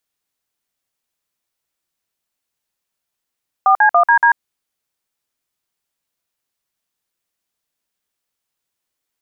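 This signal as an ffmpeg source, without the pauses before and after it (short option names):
-f lavfi -i "aevalsrc='0.299*clip(min(mod(t,0.142),0.091-mod(t,0.142))/0.002,0,1)*(eq(floor(t/0.142),0)*(sin(2*PI*770*mod(t,0.142))+sin(2*PI*1209*mod(t,0.142)))+eq(floor(t/0.142),1)*(sin(2*PI*852*mod(t,0.142))+sin(2*PI*1633*mod(t,0.142)))+eq(floor(t/0.142),2)*(sin(2*PI*697*mod(t,0.142))+sin(2*PI*1209*mod(t,0.142)))+eq(floor(t/0.142),3)*(sin(2*PI*941*mod(t,0.142))+sin(2*PI*1633*mod(t,0.142)))+eq(floor(t/0.142),4)*(sin(2*PI*941*mod(t,0.142))+sin(2*PI*1633*mod(t,0.142))))':d=0.71:s=44100"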